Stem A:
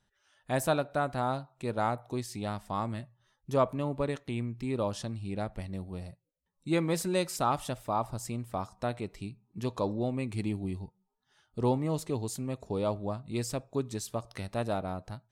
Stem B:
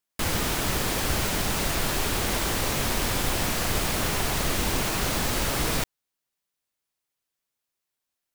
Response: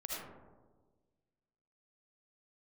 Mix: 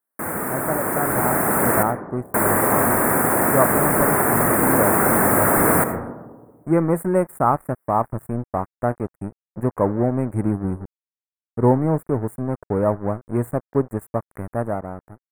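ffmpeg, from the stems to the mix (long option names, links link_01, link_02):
-filter_complex "[0:a]equalizer=frequency=4900:width=0.43:gain=-6.5,aeval=exprs='sgn(val(0))*max(abs(val(0))-0.0075,0)':channel_layout=same,volume=2dB[link_01];[1:a]highpass=190,volume=1dB,asplit=3[link_02][link_03][link_04];[link_02]atrim=end=1.83,asetpts=PTS-STARTPTS,afade=type=out:start_time=1.826:duration=0.004:curve=hsin[link_05];[link_03]atrim=start=1.83:end=2.34,asetpts=PTS-STARTPTS,volume=0[link_06];[link_04]atrim=start=2.34,asetpts=PTS-STARTPTS,afade=type=in:duration=0.004:curve=hsin[link_07];[link_05][link_06][link_07]concat=n=3:v=0:a=1,asplit=2[link_08][link_09];[link_09]volume=-6dB[link_10];[2:a]atrim=start_sample=2205[link_11];[link_10][link_11]afir=irnorm=-1:irlink=0[link_12];[link_01][link_08][link_12]amix=inputs=3:normalize=0,dynaudnorm=framelen=330:gausssize=7:maxgain=11.5dB,asuperstop=centerf=4200:order=8:qfactor=0.59"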